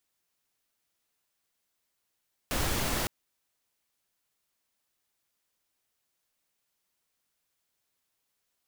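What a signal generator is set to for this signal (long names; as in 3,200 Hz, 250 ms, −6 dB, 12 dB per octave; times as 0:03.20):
noise pink, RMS −29.5 dBFS 0.56 s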